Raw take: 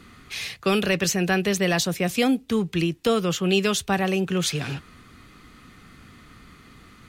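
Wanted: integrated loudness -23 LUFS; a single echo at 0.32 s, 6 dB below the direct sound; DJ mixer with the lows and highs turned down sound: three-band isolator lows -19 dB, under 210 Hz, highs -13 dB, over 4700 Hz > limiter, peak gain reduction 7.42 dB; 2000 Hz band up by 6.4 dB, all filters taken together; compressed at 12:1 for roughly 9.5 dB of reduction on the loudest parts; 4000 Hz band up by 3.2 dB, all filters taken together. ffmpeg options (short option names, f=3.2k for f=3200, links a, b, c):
-filter_complex "[0:a]equalizer=f=2k:t=o:g=7.5,equalizer=f=4k:t=o:g=3.5,acompressor=threshold=-24dB:ratio=12,acrossover=split=210 4700:gain=0.112 1 0.224[a][b][c];[a][b][c]amix=inputs=3:normalize=0,aecho=1:1:320:0.501,volume=8dB,alimiter=limit=-13.5dB:level=0:latency=1"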